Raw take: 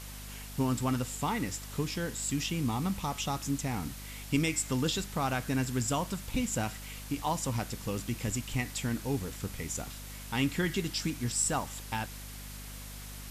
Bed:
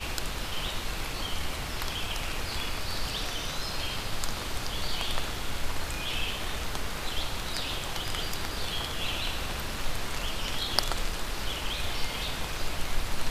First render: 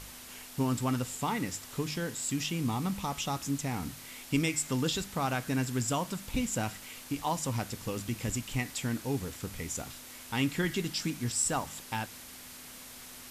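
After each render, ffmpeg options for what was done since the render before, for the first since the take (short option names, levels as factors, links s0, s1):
-af "bandreject=f=50:t=h:w=4,bandreject=f=100:t=h:w=4,bandreject=f=150:t=h:w=4,bandreject=f=200:t=h:w=4"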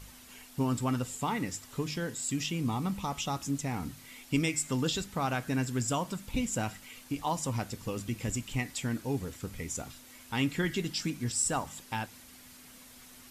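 -af "afftdn=nr=7:nf=-48"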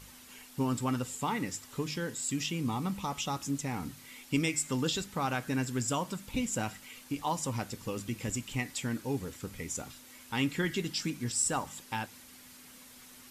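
-af "lowshelf=f=84:g=-8,bandreject=f=680:w=12"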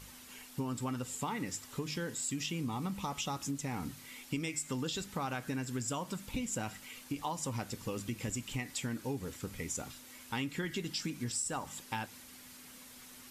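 -af "acompressor=threshold=0.0224:ratio=6"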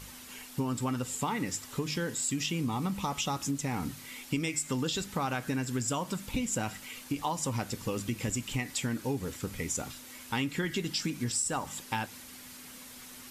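-af "volume=1.78"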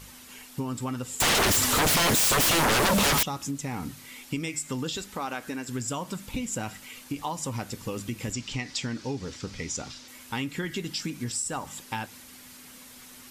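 -filter_complex "[0:a]asettb=1/sr,asplit=3[s0][s1][s2];[s0]atrim=end=1.204[s3];[s1]atrim=start=1.2:end=3.23,asetpts=PTS-STARTPTS,afade=t=in:d=0.004:c=qsin,afade=t=out:st=2.026:d=0.004:c=qsin,aeval=exprs='0.112*sin(PI/2*10*val(0)/0.112)':c=same[s4];[s2]atrim=start=3.226[s5];[s3][s4]acrossfade=d=0.004:c1=hsin:c2=qsin[s6];[s6][s5]acrossfade=d=0.004:c1=qsin:c2=hsin,asettb=1/sr,asplit=3[s7][s8][s9];[s7]atrim=end=4.974[s10];[s8]atrim=start=4.97:end=5.69,asetpts=PTS-STARTPTS,afade=t=in:d=0.004:c=qsin,afade=t=out:st=0.716:d=0.004:c=qsin,equalizer=f=130:t=o:w=0.77:g=-14[s11];[s9]atrim=start=5.686[s12];[s10][s11]acrossfade=d=0.004:c1=hsin:c2=qsin[s13];[s13][s12]acrossfade=d=0.004:c1=qsin:c2=hsin,asettb=1/sr,asplit=3[s14][s15][s16];[s14]atrim=end=8.334[s17];[s15]atrim=start=8.33:end=10.08,asetpts=PTS-STARTPTS,afade=t=in:d=0.004:c=qsin,afade=t=out:st=1.746:d=0.004:c=qsin,lowpass=f=5300:t=q:w=2.3[s18];[s16]atrim=start=10.076[s19];[s17][s18]acrossfade=d=0.004:c1=hsin:c2=qsin[s20];[s20][s19]acrossfade=d=0.004:c1=qsin:c2=hsin"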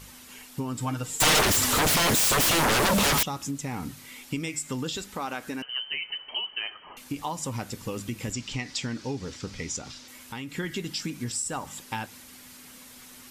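-filter_complex "[0:a]asettb=1/sr,asplit=3[s0][s1][s2];[s0]atrim=end=0.784[s3];[s1]atrim=start=0.78:end=1.41,asetpts=PTS-STARTPTS,afade=t=in:d=0.004:c=qsin,afade=t=out:st=0.626:d=0.004:c=qsin,aecho=1:1:6.5:0.91,atrim=end_sample=27783[s4];[s2]atrim=start=1.406[s5];[s3][s4]acrossfade=d=0.004:c1=hsin:c2=qsin[s6];[s6][s5]acrossfade=d=0.004:c1=qsin:c2=hsin,asettb=1/sr,asplit=3[s7][s8][s9];[s7]atrim=end=5.624[s10];[s8]atrim=start=5.62:end=6.97,asetpts=PTS-STARTPTS,afade=t=in:d=0.004:c=qsin,afade=t=out:st=1.346:d=0.004:c=qsin,lowpass=f=2700:t=q:w=0.5098,lowpass=f=2700:t=q:w=0.6013,lowpass=f=2700:t=q:w=0.9,lowpass=f=2700:t=q:w=2.563,afreqshift=-3200[s11];[s9]atrim=start=6.966[s12];[s10][s11]acrossfade=d=0.004:c1=hsin:c2=qsin[s13];[s13][s12]acrossfade=d=0.004:c1=qsin:c2=hsin,asettb=1/sr,asplit=3[s14][s15][s16];[s14]atrim=end=9.784[s17];[s15]atrim=start=9.78:end=10.52,asetpts=PTS-STARTPTS,afade=t=in:d=0.004:c=qsin,afade=t=out:st=0.736:d=0.004:c=qsin,acompressor=threshold=0.0141:ratio=2:attack=3.2:release=140:knee=1:detection=peak[s18];[s16]atrim=start=10.516[s19];[s17][s18]acrossfade=d=0.004:c1=hsin:c2=qsin[s20];[s20][s19]acrossfade=d=0.004:c1=qsin:c2=hsin"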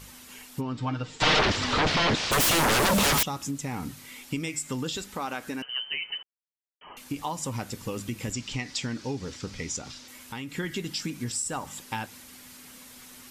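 -filter_complex "[0:a]asplit=3[s0][s1][s2];[s0]afade=t=out:st=0.6:d=0.02[s3];[s1]lowpass=f=4800:w=0.5412,lowpass=f=4800:w=1.3066,afade=t=in:st=0.6:d=0.02,afade=t=out:st=2.31:d=0.02[s4];[s2]afade=t=in:st=2.31:d=0.02[s5];[s3][s4][s5]amix=inputs=3:normalize=0,asplit=3[s6][s7][s8];[s6]atrim=end=6.23,asetpts=PTS-STARTPTS,afade=t=out:st=6.226:d=0.004:c=hsin[s9];[s7]atrim=start=6.23:end=6.81,asetpts=PTS-STARTPTS,volume=0[s10];[s8]atrim=start=6.81,asetpts=PTS-STARTPTS,afade=t=in:d=0.004:c=hsin[s11];[s9][s10][s11]concat=n=3:v=0:a=1"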